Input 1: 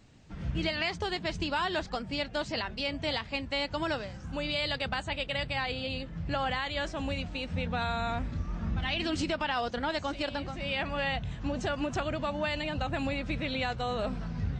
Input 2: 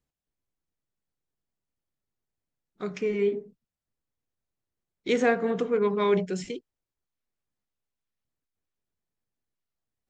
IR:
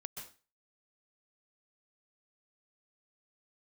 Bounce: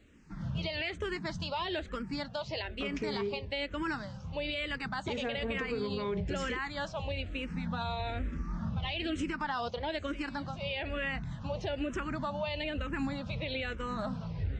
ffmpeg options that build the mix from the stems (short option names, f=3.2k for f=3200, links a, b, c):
-filter_complex "[0:a]highshelf=f=6.5k:g=-8,bandreject=f=730:w=12,asplit=2[a][b];[b]afreqshift=-1.1[c];[a][c]amix=inputs=2:normalize=1,volume=1.5dB[d];[1:a]acrossover=split=150[e][f];[f]acompressor=threshold=-30dB:ratio=6[g];[e][g]amix=inputs=2:normalize=0,volume=-2dB[h];[d][h]amix=inputs=2:normalize=0,alimiter=level_in=1.5dB:limit=-24dB:level=0:latency=1:release=61,volume=-1.5dB"